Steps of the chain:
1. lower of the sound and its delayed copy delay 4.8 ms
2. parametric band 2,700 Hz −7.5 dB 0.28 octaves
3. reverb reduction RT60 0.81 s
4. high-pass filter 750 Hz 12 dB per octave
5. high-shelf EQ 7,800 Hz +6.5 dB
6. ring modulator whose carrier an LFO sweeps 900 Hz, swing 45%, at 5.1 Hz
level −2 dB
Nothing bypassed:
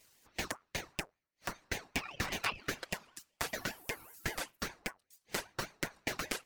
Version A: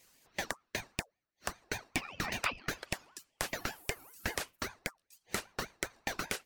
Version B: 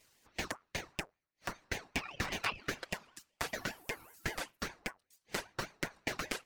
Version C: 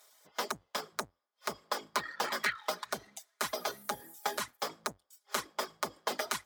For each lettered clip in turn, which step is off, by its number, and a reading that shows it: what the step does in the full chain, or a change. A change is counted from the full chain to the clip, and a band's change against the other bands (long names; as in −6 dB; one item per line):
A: 1, change in crest factor −2.0 dB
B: 5, 8 kHz band −2.5 dB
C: 6, change in crest factor −2.5 dB